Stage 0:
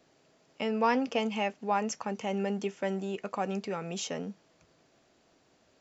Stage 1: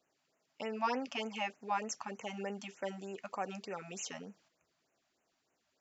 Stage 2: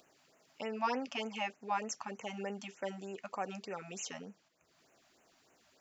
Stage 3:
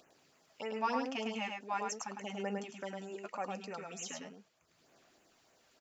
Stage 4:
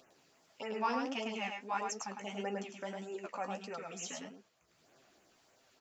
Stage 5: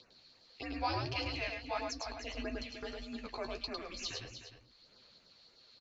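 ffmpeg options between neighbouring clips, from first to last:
ffmpeg -i in.wav -af "agate=range=-7dB:threshold=-58dB:ratio=16:detection=peak,lowshelf=frequency=400:gain=-10.5,afftfilt=real='re*(1-between(b*sr/1024,380*pow(4400/380,0.5+0.5*sin(2*PI*3.3*pts/sr))/1.41,380*pow(4400/380,0.5+0.5*sin(2*PI*3.3*pts/sr))*1.41))':imag='im*(1-between(b*sr/1024,380*pow(4400/380,0.5+0.5*sin(2*PI*3.3*pts/sr))/1.41,380*pow(4400/380,0.5+0.5*sin(2*PI*3.3*pts/sr))*1.41))':win_size=1024:overlap=0.75,volume=-3dB" out.wav
ffmpeg -i in.wav -af "acompressor=mode=upward:threshold=-57dB:ratio=2.5" out.wav
ffmpeg -i in.wav -af "aphaser=in_gain=1:out_gain=1:delay=4.4:decay=0.33:speed=0.4:type=sinusoidal,aecho=1:1:105:0.631,volume=-2dB" out.wav
ffmpeg -i in.wav -af "flanger=delay=7.4:depth=9.8:regen=32:speed=1.6:shape=sinusoidal,volume=4dB" out.wav
ffmpeg -i in.wav -filter_complex "[0:a]lowpass=frequency=4400:width_type=q:width=11,afreqshift=-150,asplit=2[link_01][link_02];[link_02]aecho=0:1:304:0.299[link_03];[link_01][link_03]amix=inputs=2:normalize=0,volume=-2dB" out.wav

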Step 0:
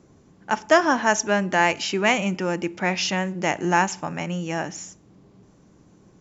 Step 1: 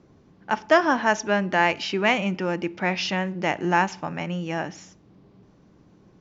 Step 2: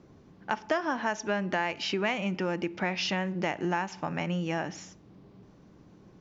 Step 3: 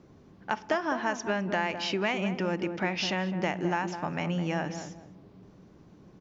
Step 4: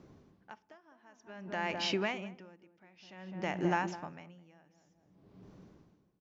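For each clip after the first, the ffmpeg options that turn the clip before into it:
ffmpeg -i in.wav -af "lowpass=frequency=5100:width=0.5412,lowpass=frequency=5100:width=1.3066,volume=-1dB" out.wav
ffmpeg -i in.wav -af "acompressor=threshold=-27dB:ratio=4" out.wav
ffmpeg -i in.wav -filter_complex "[0:a]asplit=2[link_01][link_02];[link_02]adelay=208,lowpass=frequency=850:poles=1,volume=-7dB,asplit=2[link_03][link_04];[link_04]adelay=208,lowpass=frequency=850:poles=1,volume=0.33,asplit=2[link_05][link_06];[link_06]adelay=208,lowpass=frequency=850:poles=1,volume=0.33,asplit=2[link_07][link_08];[link_08]adelay=208,lowpass=frequency=850:poles=1,volume=0.33[link_09];[link_01][link_03][link_05][link_07][link_09]amix=inputs=5:normalize=0" out.wav
ffmpeg -i in.wav -af "aeval=exprs='val(0)*pow(10,-31*(0.5-0.5*cos(2*PI*0.54*n/s))/20)':channel_layout=same,volume=-1.5dB" out.wav

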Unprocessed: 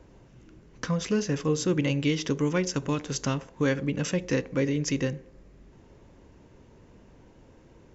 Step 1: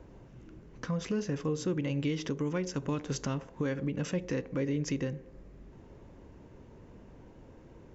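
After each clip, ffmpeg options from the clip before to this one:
ffmpeg -i in.wav -af "highshelf=frequency=2300:gain=-7.5,alimiter=level_in=1dB:limit=-24dB:level=0:latency=1:release=295,volume=-1dB,volume=1.5dB" out.wav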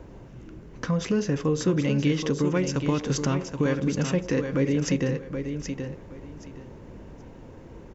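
ffmpeg -i in.wav -af "aecho=1:1:775|1550|2325:0.422|0.0928|0.0204,volume=7.5dB" out.wav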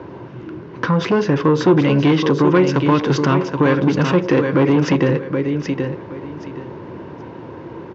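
ffmpeg -i in.wav -filter_complex "[0:a]asplit=2[link_01][link_02];[link_02]aeval=exprs='0.224*sin(PI/2*2.24*val(0)/0.224)':channel_layout=same,volume=-7dB[link_03];[link_01][link_03]amix=inputs=2:normalize=0,highpass=frequency=100:width=0.5412,highpass=frequency=100:width=1.3066,equalizer=frequency=220:width_type=q:width=4:gain=-4,equalizer=frequency=350:width_type=q:width=4:gain=7,equalizer=frequency=1000:width_type=q:width=4:gain=8,equalizer=frequency=1500:width_type=q:width=4:gain=4,lowpass=frequency=4500:width=0.5412,lowpass=frequency=4500:width=1.3066,volume=2.5dB" out.wav

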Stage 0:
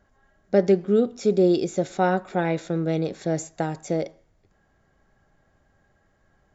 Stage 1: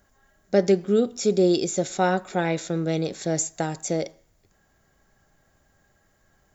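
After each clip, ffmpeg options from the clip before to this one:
ffmpeg -i in.wav -af "aemphasis=mode=production:type=75fm" out.wav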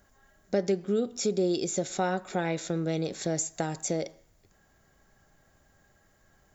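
ffmpeg -i in.wav -af "acompressor=threshold=-29dB:ratio=2" out.wav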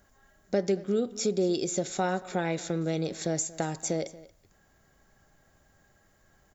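ffmpeg -i in.wav -af "aecho=1:1:231:0.106" out.wav

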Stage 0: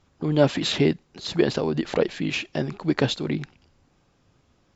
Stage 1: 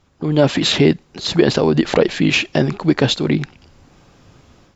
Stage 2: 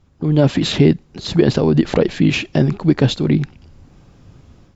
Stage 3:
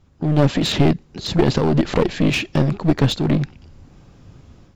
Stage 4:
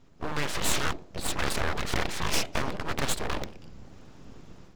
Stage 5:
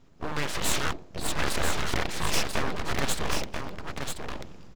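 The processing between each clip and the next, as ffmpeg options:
ffmpeg -i in.wav -af "dynaudnorm=framelen=290:gausssize=3:maxgain=10.5dB,alimiter=level_in=5.5dB:limit=-1dB:release=50:level=0:latency=1,volume=-1dB" out.wav
ffmpeg -i in.wav -af "lowshelf=frequency=290:gain=11.5,volume=-5dB" out.wav
ffmpeg -i in.wav -af "aeval=exprs='clip(val(0),-1,0.133)':channel_layout=same" out.wav
ffmpeg -i in.wav -af "afftfilt=real='re*lt(hypot(re,im),0.501)':imag='im*lt(hypot(re,im),0.501)':win_size=1024:overlap=0.75,bandreject=frequency=45.94:width_type=h:width=4,bandreject=frequency=91.88:width_type=h:width=4,bandreject=frequency=137.82:width_type=h:width=4,bandreject=frequency=183.76:width_type=h:width=4,bandreject=frequency=229.7:width_type=h:width=4,bandreject=frequency=275.64:width_type=h:width=4,bandreject=frequency=321.58:width_type=h:width=4,bandreject=frequency=367.52:width_type=h:width=4,bandreject=frequency=413.46:width_type=h:width=4,bandreject=frequency=459.4:width_type=h:width=4,bandreject=frequency=505.34:width_type=h:width=4,bandreject=frequency=551.28:width_type=h:width=4,aeval=exprs='abs(val(0))':channel_layout=same" out.wav
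ffmpeg -i in.wav -af "aecho=1:1:988:0.531" out.wav

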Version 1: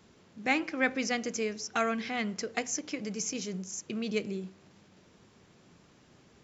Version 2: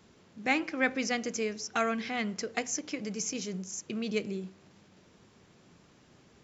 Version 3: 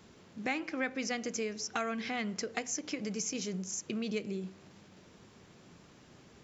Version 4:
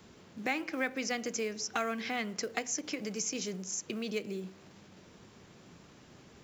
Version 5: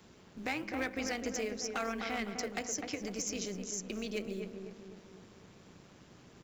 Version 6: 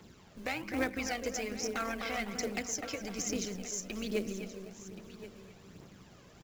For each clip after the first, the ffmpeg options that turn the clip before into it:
ffmpeg -i in.wav -af anull out.wav
ffmpeg -i in.wav -af "acompressor=threshold=-37dB:ratio=2.5,volume=2.5dB" out.wav
ffmpeg -i in.wav -filter_complex "[0:a]acrossover=split=270|1800[link_01][link_02][link_03];[link_01]alimiter=level_in=17.5dB:limit=-24dB:level=0:latency=1:release=431,volume=-17.5dB[link_04];[link_02]acrusher=bits=6:mode=log:mix=0:aa=0.000001[link_05];[link_04][link_05][link_03]amix=inputs=3:normalize=0,volume=1.5dB" out.wav
ffmpeg -i in.wav -filter_complex "[0:a]asplit=2[link_01][link_02];[link_02]adelay=254,lowpass=frequency=1500:poles=1,volume=-5.5dB,asplit=2[link_03][link_04];[link_04]adelay=254,lowpass=frequency=1500:poles=1,volume=0.49,asplit=2[link_05][link_06];[link_06]adelay=254,lowpass=frequency=1500:poles=1,volume=0.49,asplit=2[link_07][link_08];[link_08]adelay=254,lowpass=frequency=1500:poles=1,volume=0.49,asplit=2[link_09][link_10];[link_10]adelay=254,lowpass=frequency=1500:poles=1,volume=0.49,asplit=2[link_11][link_12];[link_12]adelay=254,lowpass=frequency=1500:poles=1,volume=0.49[link_13];[link_01][link_03][link_05][link_07][link_09][link_11][link_13]amix=inputs=7:normalize=0,asoftclip=type=hard:threshold=-26.5dB,tremolo=f=190:d=0.519" out.wav
ffmpeg -i in.wav -af "aphaser=in_gain=1:out_gain=1:delay=2:decay=0.47:speed=1.2:type=triangular,acrusher=bits=5:mode=log:mix=0:aa=0.000001,aecho=1:1:1076:0.178" out.wav

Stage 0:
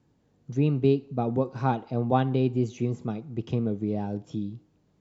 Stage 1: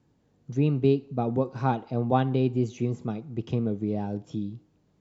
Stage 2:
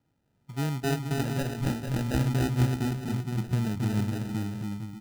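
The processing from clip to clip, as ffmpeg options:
ffmpeg -i in.wav -af anull out.wav
ffmpeg -i in.wav -af "aecho=1:1:270|459|591.3|683.9|748.7:0.631|0.398|0.251|0.158|0.1,acrusher=samples=40:mix=1:aa=0.000001,asubboost=boost=4:cutoff=250,volume=-8dB" out.wav

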